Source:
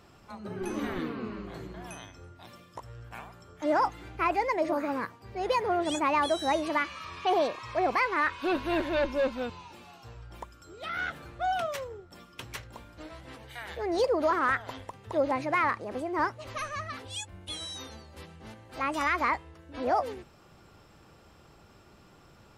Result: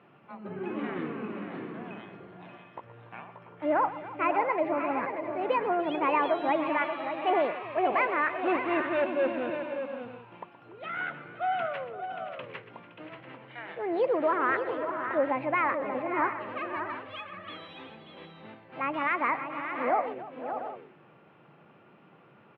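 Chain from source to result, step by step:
elliptic band-pass filter 140–2,700 Hz, stop band 40 dB
multi-tap delay 122/288/516/583/688/748 ms −15.5/−17/−15.5/−8.5/−13.5/−16.5 dB

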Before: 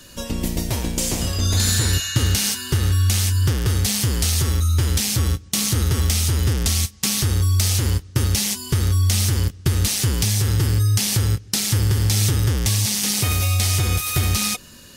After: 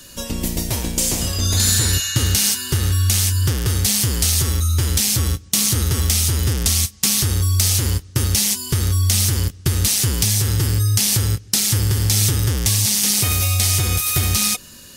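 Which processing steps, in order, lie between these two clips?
high-shelf EQ 4,800 Hz +6.5 dB

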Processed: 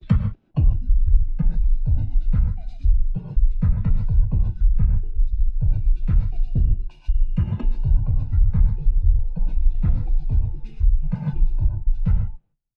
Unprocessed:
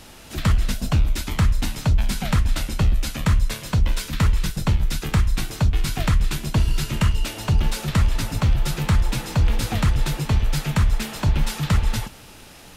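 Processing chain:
slices reordered back to front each 177 ms, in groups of 3
low-pass filter 2,900 Hz 12 dB per octave
on a send: single-tap delay 1,113 ms −24 dB
on the sum: noise reduction from a noise print of the clip's start 14 dB
low-shelf EQ 280 Hz +6.5 dB
noise gate −38 dBFS, range −22 dB
spectral tilt −3 dB per octave
reverb whose tail is shaped and stops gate 170 ms rising, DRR 3 dB
downward compressor 2 to 1, threshold −18 dBFS, peak gain reduction 15 dB
multiband upward and downward expander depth 100%
level −6 dB

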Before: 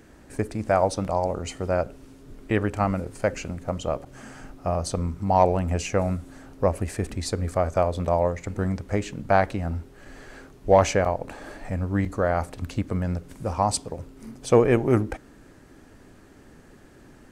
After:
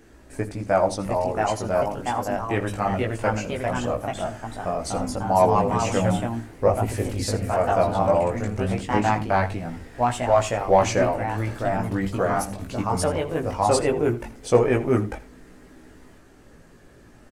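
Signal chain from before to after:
delay with pitch and tempo change per echo 753 ms, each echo +2 semitones, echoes 2
multi-voice chorus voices 4, 0.17 Hz, delay 18 ms, depth 2.5 ms
mains-hum notches 50/100/150/200 Hz
on a send: single-tap delay 82 ms −17 dB
on the sum: level +3 dB

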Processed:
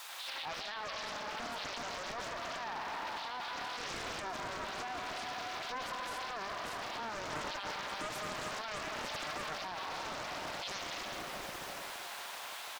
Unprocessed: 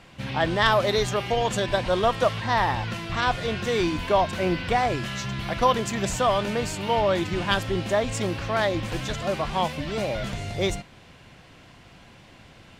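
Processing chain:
parametric band 3,700 Hz +15 dB 0.52 octaves
multiband delay without the direct sound highs, lows 90 ms, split 3,700 Hz
background noise white −45 dBFS
four-pole ladder high-pass 650 Hz, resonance 30%
high-shelf EQ 6,000 Hz −7 dB
convolution reverb RT60 3.5 s, pre-delay 118 ms, DRR 2.5 dB
brickwall limiter −40.5 dBFS, peak gain reduction 29.5 dB
0:07.32–0:09.58: comb filter 6.6 ms, depth 51%
highs frequency-modulated by the lows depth 0.75 ms
level +8 dB

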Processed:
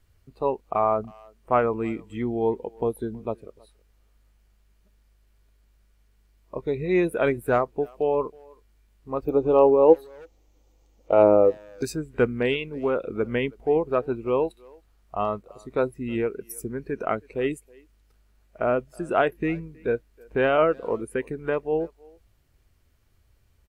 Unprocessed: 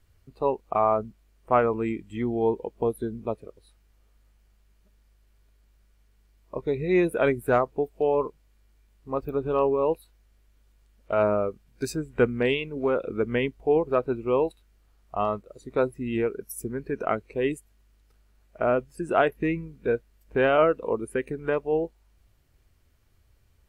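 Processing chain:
0:09.25–0:11.83: thirty-one-band graphic EQ 315 Hz +11 dB, 500 Hz +12 dB, 800 Hz +11 dB, 1,600 Hz −9 dB, 6,300 Hz +9 dB, 10,000 Hz −11 dB
far-end echo of a speakerphone 320 ms, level −25 dB

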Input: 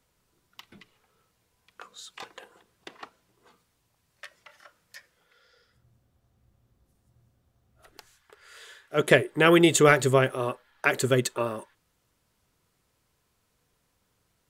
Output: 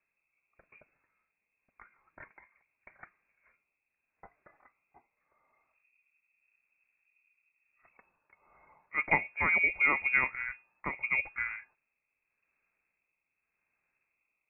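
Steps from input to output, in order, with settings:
mains-hum notches 60/120 Hz
rotating-speaker cabinet horn 0.85 Hz
voice inversion scrambler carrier 2,600 Hz
level −6.5 dB

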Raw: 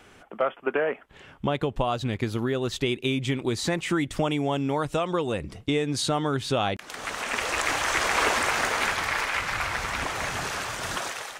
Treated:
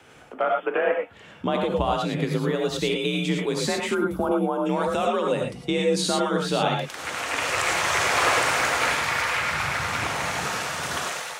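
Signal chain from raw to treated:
reverb whose tail is shaped and stops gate 130 ms rising, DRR 0.5 dB
frequency shifter +43 Hz
gain on a spectral selection 0:03.94–0:04.66, 1,600–10,000 Hz −18 dB

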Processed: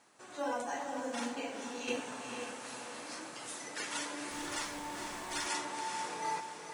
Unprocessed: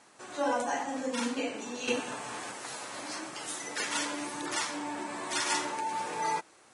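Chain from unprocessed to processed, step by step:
feedback delay with all-pass diffusion 471 ms, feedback 46%, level −6 dB
log-companded quantiser 8 bits
0:04.30–0:05.46: background noise pink −48 dBFS
level −6.5 dB

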